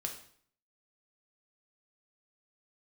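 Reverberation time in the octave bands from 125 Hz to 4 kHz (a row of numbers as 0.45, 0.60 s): 0.65, 0.60, 0.55, 0.55, 0.55, 0.50 s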